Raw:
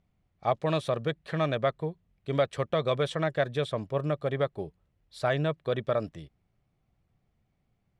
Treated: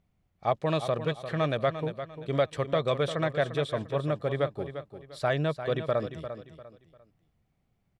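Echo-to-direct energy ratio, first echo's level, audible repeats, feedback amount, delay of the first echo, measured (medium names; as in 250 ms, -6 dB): -10.0 dB, -10.5 dB, 3, 31%, 348 ms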